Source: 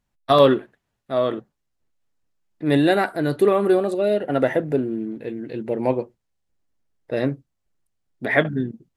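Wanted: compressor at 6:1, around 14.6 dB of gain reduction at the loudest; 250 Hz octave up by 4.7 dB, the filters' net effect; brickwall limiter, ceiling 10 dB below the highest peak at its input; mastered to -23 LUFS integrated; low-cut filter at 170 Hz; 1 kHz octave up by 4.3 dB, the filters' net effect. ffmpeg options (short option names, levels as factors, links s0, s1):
-af "highpass=170,equalizer=f=250:t=o:g=6.5,equalizer=f=1000:t=o:g=5.5,acompressor=threshold=0.0708:ratio=6,volume=2,alimiter=limit=0.251:level=0:latency=1"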